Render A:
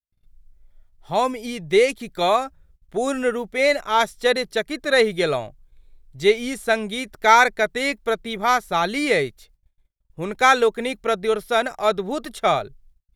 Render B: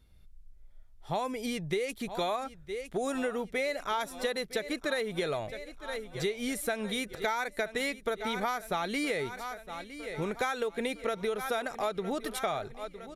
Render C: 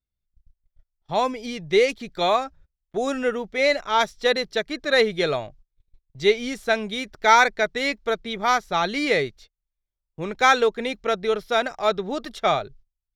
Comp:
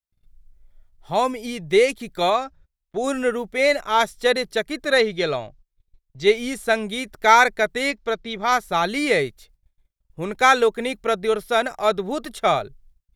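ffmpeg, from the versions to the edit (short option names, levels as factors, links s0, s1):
-filter_complex "[2:a]asplit=3[s0][s1][s2];[0:a]asplit=4[s3][s4][s5][s6];[s3]atrim=end=2.302[s7];[s0]atrim=start=2.298:end=3.042[s8];[s4]atrim=start=3.038:end=4.982[s9];[s1]atrim=start=4.978:end=6.272[s10];[s5]atrim=start=6.268:end=7.912[s11];[s2]atrim=start=7.908:end=8.522[s12];[s6]atrim=start=8.518[s13];[s7][s8]acrossfade=d=0.004:c1=hsin:c2=hsin[s14];[s14][s9]acrossfade=d=0.004:c1=hsin:c2=hsin[s15];[s15][s10]acrossfade=d=0.004:c1=hsin:c2=hsin[s16];[s16][s11]acrossfade=d=0.004:c1=hsin:c2=hsin[s17];[s17][s12]acrossfade=d=0.004:c1=hsin:c2=hsin[s18];[s18][s13]acrossfade=d=0.004:c1=hsin:c2=hsin"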